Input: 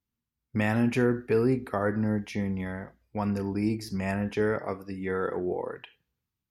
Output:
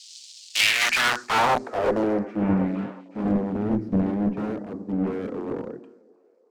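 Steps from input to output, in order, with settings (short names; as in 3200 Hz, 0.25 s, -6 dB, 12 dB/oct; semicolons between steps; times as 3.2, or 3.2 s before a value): band noise 4200–8500 Hz -51 dBFS; sample leveller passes 3; in parallel at +2 dB: compressor 20:1, threshold -28 dBFS, peak gain reduction 13 dB; on the sum: wrapped overs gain 13 dB; band-pass sweep 3100 Hz -> 240 Hz, 0.48–2.43; notches 60/120/180/240/300/360 Hz; one-sided clip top -26 dBFS; on a send: delay with a stepping band-pass 0.365 s, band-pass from 290 Hz, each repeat 0.7 oct, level -9.5 dB; on the sum: three-band expander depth 100%; gain +3 dB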